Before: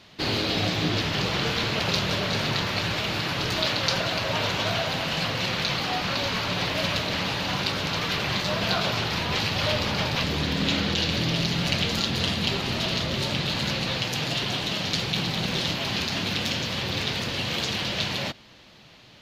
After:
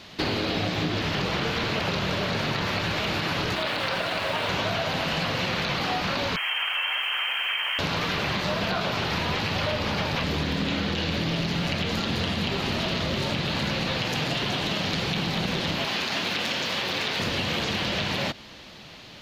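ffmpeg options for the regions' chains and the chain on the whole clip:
-filter_complex "[0:a]asettb=1/sr,asplit=3[a][b][c];[a]atrim=end=3.554[d];[b]atrim=start=3.55:end=4.49,asetpts=PTS-STARTPTS,afade=t=in:d=0.004:c=qsin,afade=t=out:st=0.936:d=0.004:c=qsin,lowpass=4k,lowshelf=f=270:g=-7.5,aeval=exprs='sgn(val(0))*max(abs(val(0))-0.00708,0)':c=same[e];[c]atrim=start=4.486[f];[d][e]acrossfade=d=0.004:c1=hsin:c2=qsin[g];[g][f]acrossfade=d=0.004:c1=qsin:c2=hsin,asettb=1/sr,asplit=3[h][i][j];[h]atrim=end=6.364[k];[i]atrim=start=6.36:end=7.79,asetpts=PTS-STARTPTS,afade=t=in:d=0.004:c=qsin,afade=t=out:st=1.426:d=0.004:c=qsin,lowpass=f=2.8k:t=q:w=0.5098,lowpass=f=2.8k:t=q:w=0.6013,lowpass=f=2.8k:t=q:w=0.9,lowpass=f=2.8k:t=q:w=2.563,afreqshift=-3300,highpass=1.3k,acrusher=bits=7:mix=0:aa=0.5[l];[j]atrim=start=7.786[m];[k][l]acrossfade=d=0.004:c1=hsin:c2=qsin[n];[n][m]acrossfade=d=0.004:c1=qsin:c2=hsin,asettb=1/sr,asplit=3[o][p][q];[o]atrim=end=15.854[r];[p]atrim=start=15.85:end=17.2,asetpts=PTS-STARTPTS,afade=t=in:d=0.004:c=qsin,afade=t=out:st=1.346:d=0.004:c=qsin,highpass=f=460:p=1,aeval=exprs='sgn(val(0))*max(abs(val(0))-0.00141,0)':c=same[s];[q]atrim=start=17.196[t];[r][s]acrossfade=d=0.004:c1=hsin:c2=qsin[u];[u][t]acrossfade=d=0.004:c1=qsin:c2=hsin,acrossover=split=2700[v][w];[w]acompressor=threshold=-34dB:ratio=4:attack=1:release=60[x];[v][x]amix=inputs=2:normalize=0,equalizer=f=120:w=5.9:g=-6.5,acompressor=threshold=-30dB:ratio=6,volume=6.5dB"

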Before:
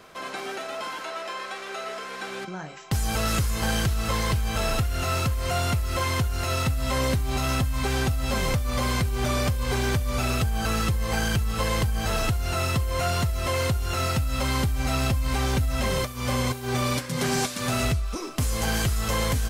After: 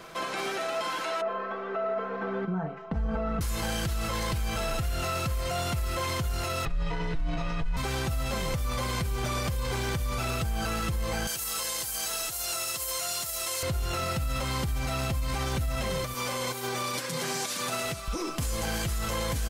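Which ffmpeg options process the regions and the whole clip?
-filter_complex "[0:a]asettb=1/sr,asplit=3[a][b][c];[a]atrim=end=1.214[d];[b]atrim=start=1.21:end=3.41,asetpts=PTS-STARTPTS,afade=t=in:d=0.004:c=qsin,afade=t=out:st=2.196:d=0.004:c=qsin,lowpass=1k,aecho=1:1:4.5:0.92,atrim=end_sample=97020[e];[c]atrim=start=3.406[f];[d][e]acrossfade=d=0.004:c1=hsin:c2=qsin[g];[g][f]acrossfade=d=0.004:c1=qsin:c2=hsin,asettb=1/sr,asplit=3[h][i][j];[h]atrim=end=6.654[k];[i]atrim=start=6.65:end=7.77,asetpts=PTS-STARTPTS,afade=t=in:d=0.004:c=qsin,afade=t=out:st=1.116:d=0.004:c=qsin,lowpass=5.8k,afreqshift=-93,bass=f=250:g=3,treble=f=4k:g=-11[l];[j]atrim=start=7.766[m];[k][l]acrossfade=d=0.004:c1=hsin:c2=qsin[n];[n][m]acrossfade=d=0.004:c1=qsin:c2=hsin,asettb=1/sr,asplit=3[o][p][q];[o]atrim=end=11.274[r];[p]atrim=start=11.27:end=13.63,asetpts=PTS-STARTPTS,afade=t=in:d=0.004:c=qsin,afade=t=out:st=2.356:d=0.004:c=qsin,bass=f=250:g=-15,treble=f=4k:g=15,acrossover=split=380|850[s][t][u];[s]acompressor=threshold=-45dB:ratio=4[v];[t]acompressor=threshold=-45dB:ratio=4[w];[u]acompressor=threshold=-26dB:ratio=4[x];[v][w][x]amix=inputs=3:normalize=0[y];[q]atrim=start=13.626[z];[r][y]acrossfade=d=0.004:c1=hsin:c2=qsin[aa];[aa][z]acrossfade=d=0.004:c1=qsin:c2=hsin,asettb=1/sr,asplit=3[ab][ac][ad];[ab]atrim=end=16.144[ae];[ac]atrim=start=16.14:end=18.08,asetpts=PTS-STARTPTS,afade=t=in:d=0.004:c=qsin,afade=t=out:st=1.936:d=0.004:c=qsin,highpass=130,bass=f=250:g=-7,treble=f=4k:g=2[af];[ad]atrim=start=18.076[ag];[ae][af]acrossfade=d=0.004:c1=hsin:c2=qsin[ah];[ah][ag]acrossfade=d=0.004:c1=qsin:c2=hsin,aecho=1:1:6:0.37,alimiter=level_in=1.5dB:limit=-24dB:level=0:latency=1:release=63,volume=-1.5dB,volume=3dB"

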